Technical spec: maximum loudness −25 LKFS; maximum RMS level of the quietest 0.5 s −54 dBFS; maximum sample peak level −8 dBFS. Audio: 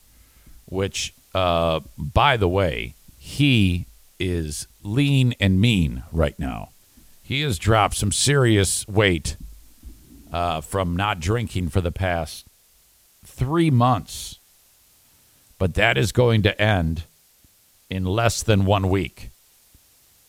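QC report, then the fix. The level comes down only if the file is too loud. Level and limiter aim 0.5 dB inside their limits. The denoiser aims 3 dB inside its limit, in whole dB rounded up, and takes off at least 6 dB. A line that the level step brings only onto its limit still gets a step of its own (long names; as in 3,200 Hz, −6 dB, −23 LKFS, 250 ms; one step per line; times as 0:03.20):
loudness −21.5 LKFS: out of spec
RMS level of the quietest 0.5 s −57 dBFS: in spec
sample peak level −2.5 dBFS: out of spec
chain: level −4 dB
brickwall limiter −8.5 dBFS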